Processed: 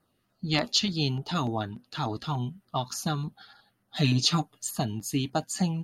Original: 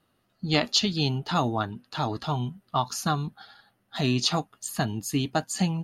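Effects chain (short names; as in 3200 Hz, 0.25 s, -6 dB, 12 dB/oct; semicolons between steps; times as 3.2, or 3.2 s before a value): LFO notch saw down 3.4 Hz 400–3500 Hz; 3.96–4.71 comb 6.7 ms, depth 93%; gain -1.5 dB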